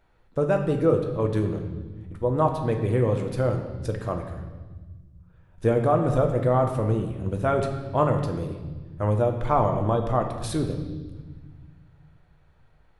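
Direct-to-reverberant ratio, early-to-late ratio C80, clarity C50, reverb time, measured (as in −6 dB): 3.5 dB, 8.5 dB, 7.0 dB, 1.3 s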